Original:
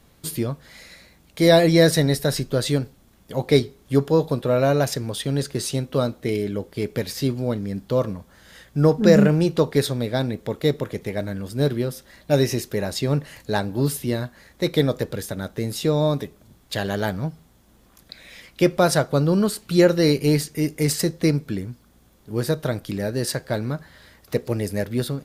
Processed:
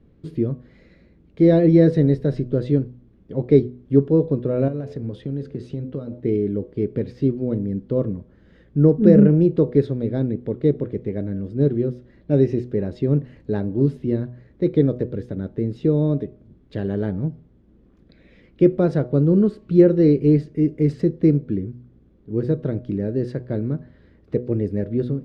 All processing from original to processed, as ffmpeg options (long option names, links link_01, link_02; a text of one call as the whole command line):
ffmpeg -i in.wav -filter_complex "[0:a]asettb=1/sr,asplit=3[link_01][link_02][link_03];[link_01]atrim=end=4.684[link_04];[link_02]atrim=start=4.68:end=6.2,asetpts=PTS-STARTPTS,afade=type=in:duration=0.004:curve=qsin,afade=type=out:start_time=1.516:duration=0.004:curve=qsin,equalizer=frequency=370:width=5.8:gain=-5.5,bandreject=frequency=86.59:width_type=h:width=4,bandreject=frequency=173.18:width_type=h:width=4,bandreject=frequency=259.77:width_type=h:width=4,bandreject=frequency=346.36:width_type=h:width=4,bandreject=frequency=432.95:width_type=h:width=4,bandreject=frequency=519.54:width_type=h:width=4,bandreject=frequency=606.13:width_type=h:width=4,bandreject=frequency=692.72:width_type=h:width=4,bandreject=frequency=779.31:width_type=h:width=4,bandreject=frequency=865.9:width_type=h:width=4,bandreject=frequency=952.49:width_type=h:width=4,acompressor=threshold=-25dB:ratio=10:attack=3.2:release=140:knee=1:detection=peak[link_05];[link_03]atrim=start=6.196[link_06];[link_04][link_05]acrossfade=duration=0.004:curve1=hsin:curve2=qsin[link_07];[link_07][link_06]acrossfade=duration=0.004:curve1=qsin:curve2=hsin,lowpass=2300,lowshelf=frequency=560:width_type=q:width=1.5:gain=12,bandreject=frequency=122.9:width_type=h:width=4,bandreject=frequency=245.8:width_type=h:width=4,bandreject=frequency=368.7:width_type=h:width=4,bandreject=frequency=491.6:width_type=h:width=4,bandreject=frequency=614.5:width_type=h:width=4,bandreject=frequency=737.4:width_type=h:width=4,bandreject=frequency=860.3:width_type=h:width=4,bandreject=frequency=983.2:width_type=h:width=4,bandreject=frequency=1106.1:width_type=h:width=4,volume=-10dB" out.wav